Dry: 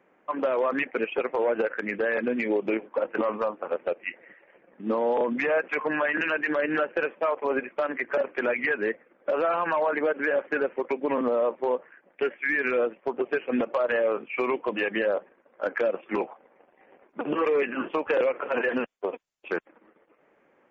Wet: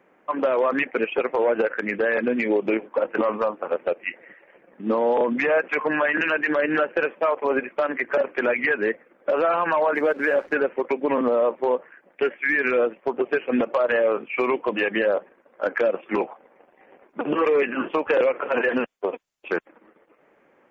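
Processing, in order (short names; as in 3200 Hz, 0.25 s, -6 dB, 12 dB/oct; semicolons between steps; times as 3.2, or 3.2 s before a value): 9.95–10.53 backlash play -51 dBFS; gain +4 dB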